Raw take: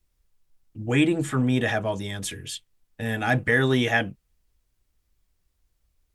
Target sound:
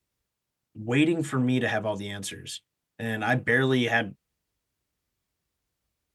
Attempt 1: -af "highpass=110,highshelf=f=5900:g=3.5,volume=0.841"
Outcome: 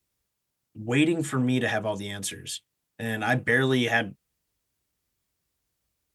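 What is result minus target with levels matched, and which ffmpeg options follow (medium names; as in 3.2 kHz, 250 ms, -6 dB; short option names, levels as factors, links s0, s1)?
8 kHz band +4.0 dB
-af "highpass=110,highshelf=f=5900:g=-3,volume=0.841"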